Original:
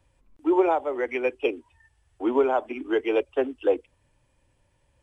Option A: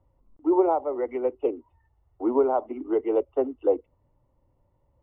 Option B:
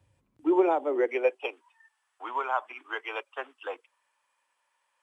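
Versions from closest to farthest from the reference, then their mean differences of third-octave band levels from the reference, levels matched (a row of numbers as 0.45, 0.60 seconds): A, B; 3.0, 4.5 decibels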